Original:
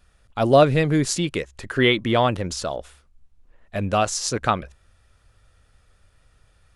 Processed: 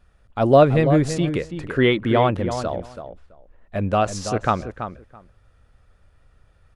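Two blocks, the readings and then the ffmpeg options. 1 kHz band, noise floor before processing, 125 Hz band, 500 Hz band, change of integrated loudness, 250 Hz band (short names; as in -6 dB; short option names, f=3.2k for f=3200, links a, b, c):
+1.0 dB, -61 dBFS, +2.5 dB, +2.0 dB, +1.0 dB, +2.5 dB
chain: -filter_complex "[0:a]highshelf=f=2.6k:g=-11.5,asplit=2[a][b];[b]adelay=331,lowpass=f=2.3k:p=1,volume=-9dB,asplit=2[c][d];[d]adelay=331,lowpass=f=2.3k:p=1,volume=0.16[e];[c][e]amix=inputs=2:normalize=0[f];[a][f]amix=inputs=2:normalize=0,volume=2dB"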